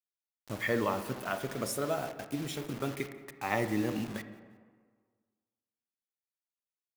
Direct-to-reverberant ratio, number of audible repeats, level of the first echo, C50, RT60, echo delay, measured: 10.5 dB, 1, -22.5 dB, 11.0 dB, 1.7 s, 0.177 s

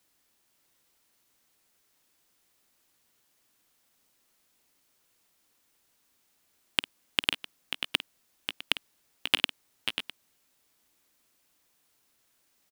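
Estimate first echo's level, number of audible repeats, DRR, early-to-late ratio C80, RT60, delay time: -15.5 dB, 3, none, none, none, 51 ms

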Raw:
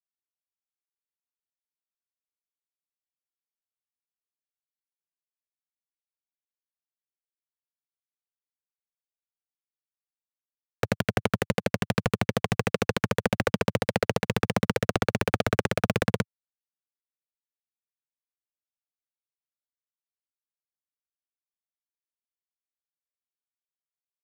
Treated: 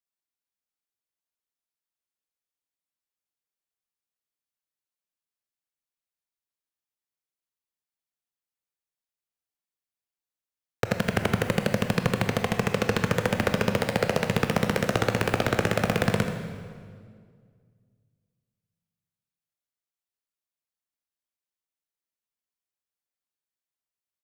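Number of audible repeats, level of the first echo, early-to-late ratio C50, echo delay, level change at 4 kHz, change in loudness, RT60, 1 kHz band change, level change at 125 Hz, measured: 1, -11.0 dB, 5.5 dB, 80 ms, +1.0 dB, +1.5 dB, 2.0 s, +1.0 dB, +1.5 dB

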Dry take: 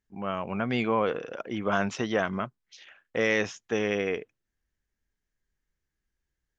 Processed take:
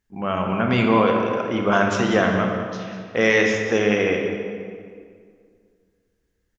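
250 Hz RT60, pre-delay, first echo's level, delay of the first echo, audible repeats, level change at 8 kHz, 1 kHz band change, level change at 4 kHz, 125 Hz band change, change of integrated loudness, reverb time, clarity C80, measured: 2.4 s, 24 ms, -12.0 dB, 0.199 s, 1, n/a, +9.0 dB, +8.5 dB, +10.5 dB, +8.5 dB, 2.0 s, 4.0 dB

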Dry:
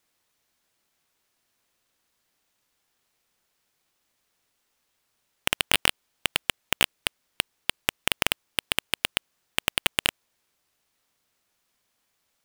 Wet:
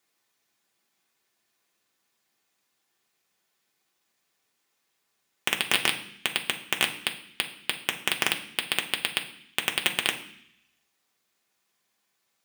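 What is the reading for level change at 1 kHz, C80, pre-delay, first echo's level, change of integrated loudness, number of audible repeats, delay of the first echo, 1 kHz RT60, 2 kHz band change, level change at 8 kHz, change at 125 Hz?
-0.5 dB, 14.5 dB, 3 ms, none, -0.5 dB, none, none, 0.65 s, 0.0 dB, -1.5 dB, -4.5 dB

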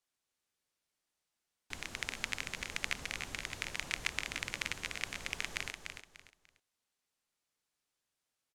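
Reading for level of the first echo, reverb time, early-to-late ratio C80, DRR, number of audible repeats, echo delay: -6.5 dB, none, none, none, 3, 0.295 s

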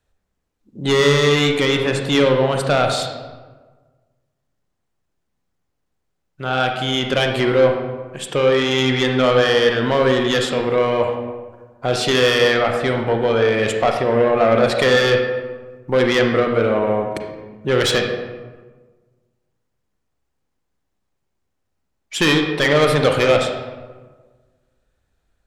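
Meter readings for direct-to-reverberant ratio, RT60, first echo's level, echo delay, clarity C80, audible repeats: 3.0 dB, 1.4 s, none, none, 6.5 dB, none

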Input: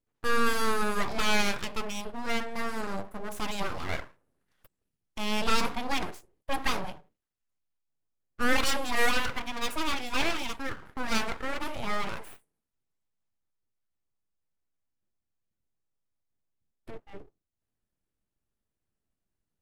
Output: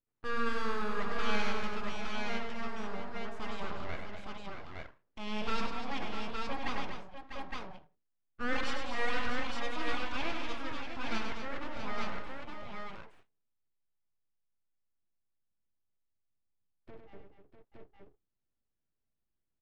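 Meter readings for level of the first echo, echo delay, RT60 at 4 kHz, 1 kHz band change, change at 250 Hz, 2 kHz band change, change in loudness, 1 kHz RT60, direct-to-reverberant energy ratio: -6.0 dB, 99 ms, none, -5.5 dB, -5.0 dB, -6.5 dB, -7.5 dB, none, none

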